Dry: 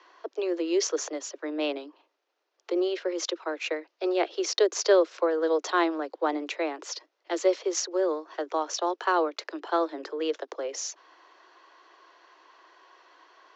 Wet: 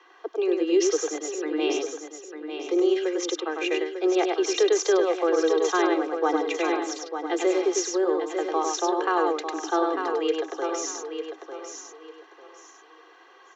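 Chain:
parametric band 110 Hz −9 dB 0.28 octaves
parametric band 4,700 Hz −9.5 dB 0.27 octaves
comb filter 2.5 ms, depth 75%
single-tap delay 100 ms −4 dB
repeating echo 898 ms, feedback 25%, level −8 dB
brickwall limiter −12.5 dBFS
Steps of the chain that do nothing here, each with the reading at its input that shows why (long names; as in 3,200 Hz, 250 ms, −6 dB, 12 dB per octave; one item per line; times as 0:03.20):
parametric band 110 Hz: nothing at its input below 270 Hz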